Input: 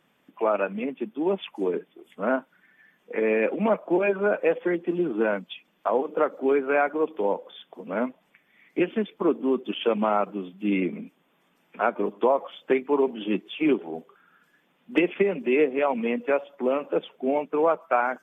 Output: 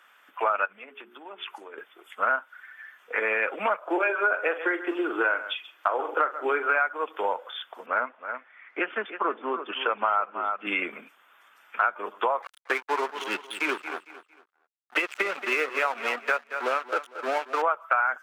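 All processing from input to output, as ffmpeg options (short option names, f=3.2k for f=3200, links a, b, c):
-filter_complex "[0:a]asettb=1/sr,asplit=3[a][b][c];[a]atrim=end=0.654[d];[b]atrim=start=0.65:end=1.78,asetpts=PTS-STARTPTS,afade=t=in:d=0.004:c=qsin,afade=t=out:st=1.126:d=0.004:c=qsin,bandreject=f=60:t=h:w=6,bandreject=f=120:t=h:w=6,bandreject=f=180:t=h:w=6,bandreject=f=240:t=h:w=6,bandreject=f=300:t=h:w=6,bandreject=f=360:t=h:w=6,bandreject=f=420:t=h:w=6,acompressor=threshold=-40dB:ratio=5:attack=3.2:release=140:knee=1:detection=peak[e];[c]atrim=start=1.776[f];[d][e]acrossfade=d=0.004:c1=hsin:c2=qsin[g];[g][f]acrossfade=d=0.004:c1=qsin:c2=hsin,asettb=1/sr,asplit=3[h][i][j];[h]atrim=end=3.814[k];[i]atrim=start=3.81:end=6.79,asetpts=PTS-STARTPTS,afade=t=in:d=0.004:c=qsin,afade=t=out:st=2.976:d=0.004:c=qsin,lowshelf=f=230:t=q:w=3:g=-10,asplit=2[l][m];[m]adelay=43,volume=-12dB[n];[l][n]amix=inputs=2:normalize=0,atrim=end_sample=131418,aecho=1:1:134:0.141,atrim=end_sample=131418[o];[j]atrim=start=6.786[p];[k][o]acrossfade=d=0.004:c1=hsin:c2=qsin[q];[q][p]acrossfade=d=0.004:c1=qsin:c2=hsin,asettb=1/sr,asplit=3[r][s][t];[r]atrim=end=7.864[u];[s]atrim=start=7.86:end=10.67,asetpts=PTS-STARTPTS,afade=t=in:d=0.004:c=qsin,afade=t=out:st=2.806:d=0.004:c=qsin,highpass=180,lowpass=2.1k,aecho=1:1:320:0.224,atrim=end_sample=123921[v];[t]atrim=start=10.666[w];[u][v]acrossfade=d=0.004:c1=hsin:c2=qsin[x];[x][w]acrossfade=d=0.004:c1=qsin:c2=hsin,asettb=1/sr,asplit=3[y][z][aa];[y]atrim=end=12.424[ab];[z]atrim=start=12.42:end=17.62,asetpts=PTS-STARTPTS,afade=t=in:d=0.004:c=qsin,afade=t=out:st=5.196:d=0.004:c=qsin,aeval=exprs='sgn(val(0))*max(abs(val(0))-0.015,0)':c=same,aecho=1:1:227|454|681:0.2|0.0619|0.0192,atrim=end_sample=229320[ac];[aa]atrim=start=17.616[ad];[ab][ac]acrossfade=d=0.004:c1=hsin:c2=qsin[ae];[ae][ad]acrossfade=d=0.004:c1=qsin:c2=hsin,highpass=870,equalizer=f=1.4k:t=o:w=0.6:g=10.5,acompressor=threshold=-30dB:ratio=4,volume=7.5dB"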